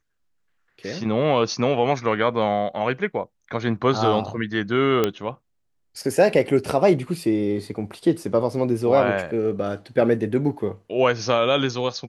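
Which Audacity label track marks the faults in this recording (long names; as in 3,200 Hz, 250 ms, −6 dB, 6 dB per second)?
5.040000	5.040000	click −7 dBFS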